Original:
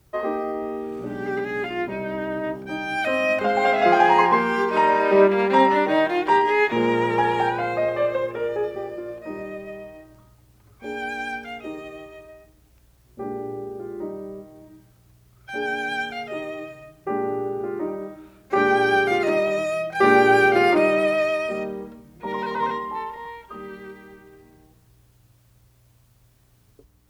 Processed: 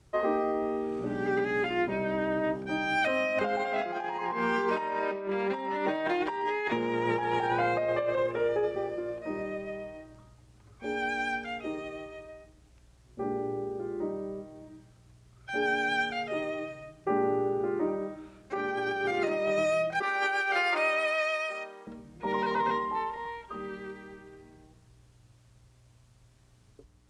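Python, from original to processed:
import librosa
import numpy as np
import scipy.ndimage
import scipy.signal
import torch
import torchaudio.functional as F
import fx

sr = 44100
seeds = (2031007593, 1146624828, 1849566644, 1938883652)

y = fx.highpass(x, sr, hz=970.0, slope=12, at=(20.02, 21.87))
y = scipy.signal.sosfilt(scipy.signal.butter(4, 9300.0, 'lowpass', fs=sr, output='sos'), y)
y = fx.over_compress(y, sr, threshold_db=-24.0, ratio=-1.0)
y = y * 10.0 ** (-4.5 / 20.0)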